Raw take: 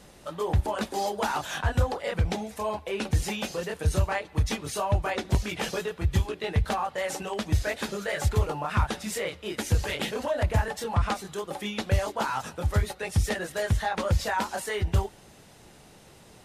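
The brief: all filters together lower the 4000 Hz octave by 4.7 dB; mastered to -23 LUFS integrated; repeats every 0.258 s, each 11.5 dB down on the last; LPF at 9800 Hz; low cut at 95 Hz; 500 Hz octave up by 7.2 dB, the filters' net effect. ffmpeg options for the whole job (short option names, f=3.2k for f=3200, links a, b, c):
-af "highpass=95,lowpass=9.8k,equalizer=f=500:t=o:g=9,equalizer=f=4k:t=o:g=-6.5,aecho=1:1:258|516|774:0.266|0.0718|0.0194,volume=3.5dB"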